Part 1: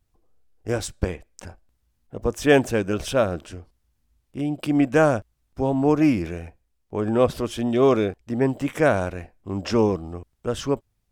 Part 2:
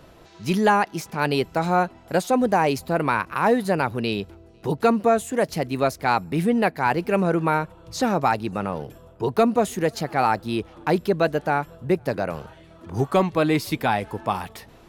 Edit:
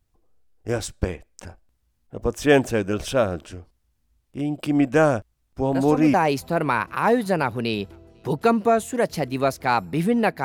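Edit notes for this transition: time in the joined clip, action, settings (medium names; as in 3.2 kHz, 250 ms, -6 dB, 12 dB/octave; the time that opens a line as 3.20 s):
part 1
5.72 s: add part 2 from 2.11 s 0.42 s -8.5 dB
6.14 s: go over to part 2 from 2.53 s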